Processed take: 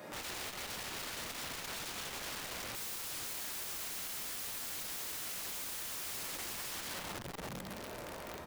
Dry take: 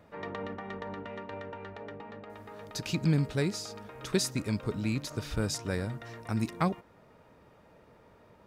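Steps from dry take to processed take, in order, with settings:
0:02.05–0:04.26: parametric band 500 Hz −14 dB 2.9 octaves
delay with pitch and tempo change per echo 789 ms, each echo +2 semitones, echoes 2
multiband delay without the direct sound highs, lows 660 ms, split 150 Hz
downward compressor 2 to 1, threshold −59 dBFS, peak gain reduction 19.5 dB
high-shelf EQ 4,400 Hz +10.5 dB
reverb whose tail is shaped and stops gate 430 ms falling, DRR −6 dB
wrap-around overflow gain 44.5 dB
saturating transformer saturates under 130 Hz
level +8 dB

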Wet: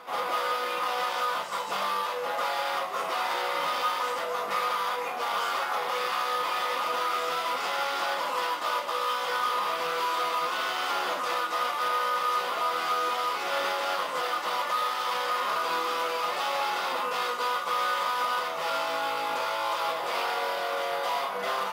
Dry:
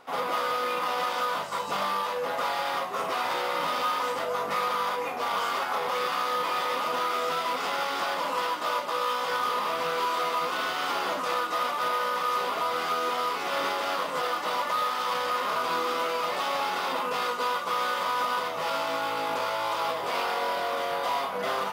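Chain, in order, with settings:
low-shelf EQ 290 Hz −11 dB
echo ahead of the sound 225 ms −16 dB
on a send at −10.5 dB: convolution reverb RT60 0.80 s, pre-delay 6 ms

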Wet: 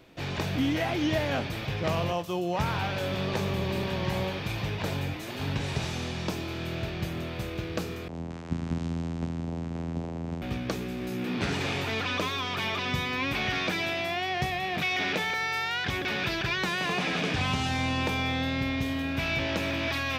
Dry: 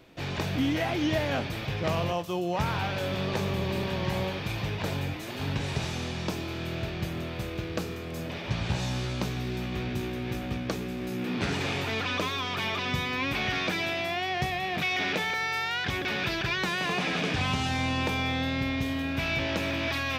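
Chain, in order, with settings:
0:08.08–0:10.42: channel vocoder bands 4, saw 83.7 Hz

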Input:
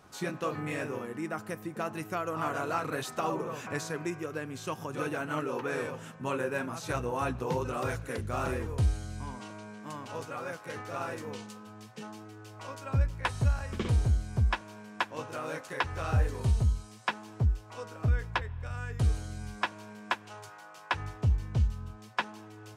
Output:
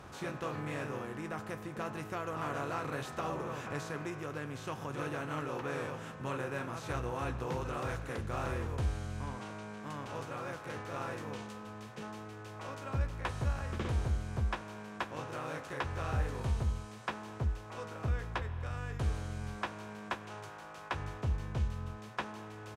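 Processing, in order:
compressor on every frequency bin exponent 0.6
high-shelf EQ 5,300 Hz −4.5 dB
double-tracking delay 14 ms −11.5 dB
level −9 dB

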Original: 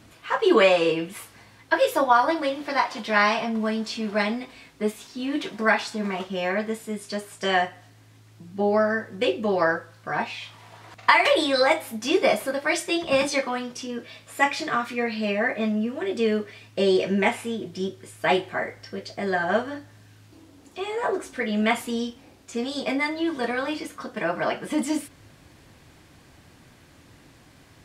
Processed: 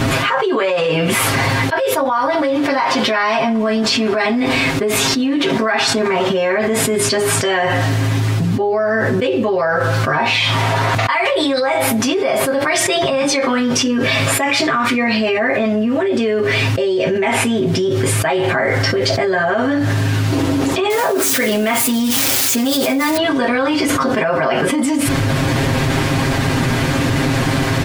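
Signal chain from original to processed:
0:20.90–0:23.17: spike at every zero crossing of −22.5 dBFS
high-shelf EQ 3,800 Hz −7.5 dB
comb filter 7.5 ms, depth 95%
envelope flattener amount 100%
level −5.5 dB

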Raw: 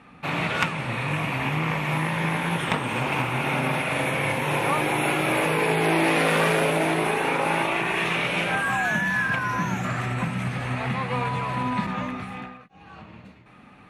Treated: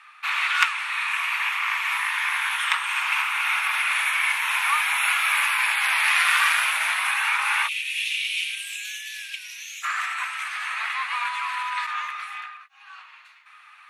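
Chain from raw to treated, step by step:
Butterworth high-pass 1,100 Hz 36 dB per octave, from 0:07.67 2,600 Hz, from 0:09.82 1,100 Hz
level +5.5 dB

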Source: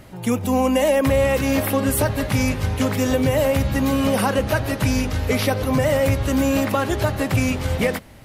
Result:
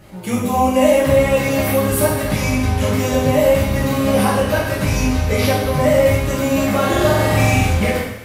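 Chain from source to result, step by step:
0:06.68–0:07.66: flutter between parallel walls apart 7.8 metres, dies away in 1.3 s
coupled-rooms reverb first 0.85 s, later 2.4 s, DRR −7.5 dB
level −5 dB

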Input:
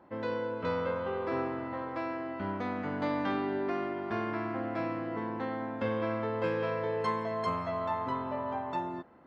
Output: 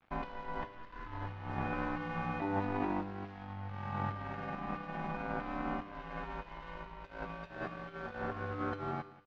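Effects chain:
0:05.94–0:06.75: low-shelf EQ 190 Hz −8.5 dB
compressor whose output falls as the input rises −37 dBFS, ratio −0.5
ring modulation 490 Hz
0:00.68–0:01.12: phaser with its sweep stopped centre 1,500 Hz, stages 4
0:02.41–0:03.25: hollow resonant body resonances 340/900/3,900 Hz, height 13 dB, ringing for 40 ms
dead-zone distortion −52 dBFS
high-frequency loss of the air 170 metres
tuned comb filter 99 Hz, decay 0.91 s, harmonics all, mix 70%
single-tap delay 183 ms −20 dB
level +11 dB

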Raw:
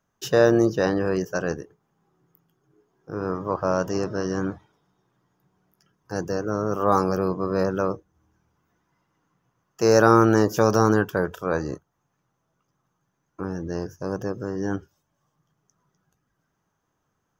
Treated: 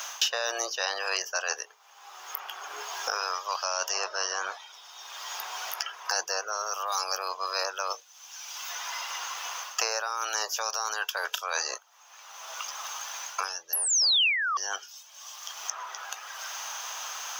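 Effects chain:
sound drawn into the spectrogram fall, 0:13.73–0:14.57, 1,100–12,000 Hz −8 dBFS
inverse Chebyshev high-pass filter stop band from 280 Hz, stop band 50 dB
high-shelf EQ 12,000 Hz +5.5 dB
reversed playback
downward compressor 6 to 1, threshold −37 dBFS, peak gain reduction 28 dB
reversed playback
flat-topped bell 4,000 Hz +10 dB
multiband upward and downward compressor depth 100%
level +8 dB

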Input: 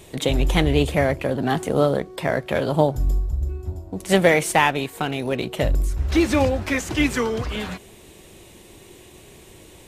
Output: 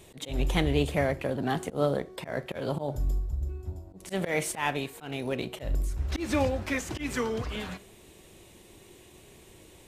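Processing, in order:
four-comb reverb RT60 0.36 s, combs from 28 ms, DRR 18 dB
volume swells 142 ms
level −7 dB

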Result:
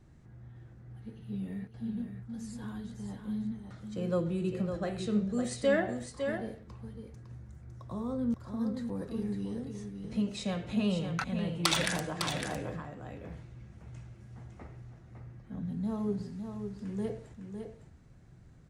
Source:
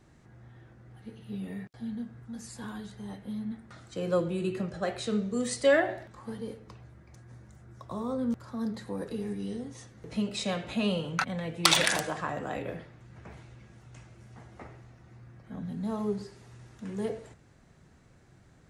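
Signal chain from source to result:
low-shelf EQ 230 Hz +11.5 dB
on a send: single-tap delay 556 ms −7 dB
on the sum: level −6.5 dB

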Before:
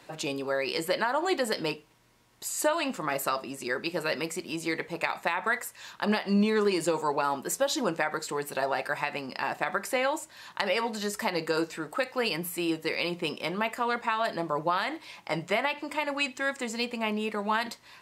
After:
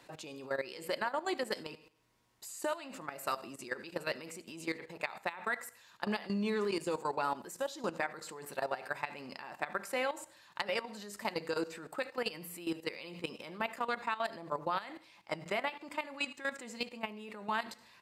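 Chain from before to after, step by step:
repeating echo 74 ms, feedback 49%, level −18.5 dB
on a send at −19 dB: convolution reverb RT60 0.20 s, pre-delay 87 ms
on the sum: output level in coarse steps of 14 dB
level −4.5 dB

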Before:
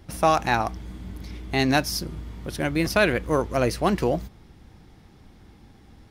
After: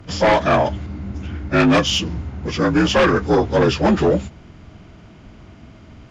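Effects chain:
partials spread apart or drawn together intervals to 82%
sine wavefolder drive 8 dB, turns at −8.5 dBFS
0:00.86–0:02.46: one half of a high-frequency compander decoder only
level −1 dB

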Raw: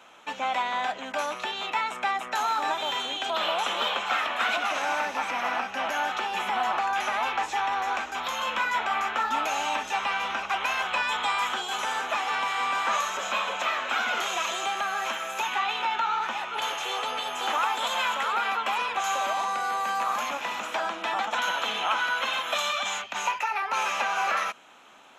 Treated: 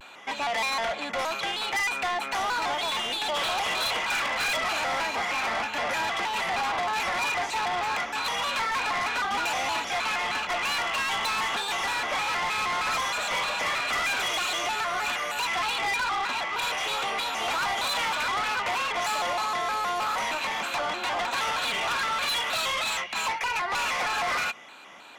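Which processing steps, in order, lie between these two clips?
hollow resonant body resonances 2,200/3,700 Hz, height 16 dB, ringing for 50 ms
soft clipping −28.5 dBFS, distortion −9 dB
pitch modulation by a square or saw wave square 3.2 Hz, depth 160 cents
level +4 dB

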